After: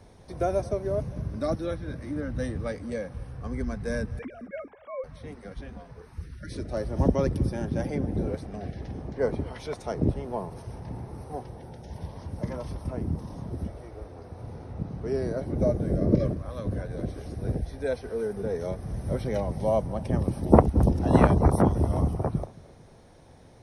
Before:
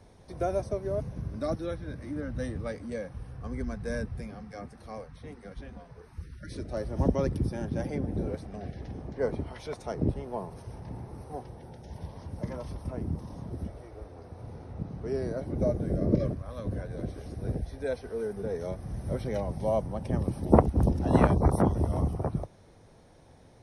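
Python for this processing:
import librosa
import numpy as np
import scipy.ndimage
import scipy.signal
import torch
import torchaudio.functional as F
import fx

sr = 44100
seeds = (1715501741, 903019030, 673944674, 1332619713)

y = fx.sine_speech(x, sr, at=(4.19, 5.04))
y = fx.echo_feedback(y, sr, ms=224, feedback_pct=43, wet_db=-22.0)
y = y * librosa.db_to_amplitude(3.0)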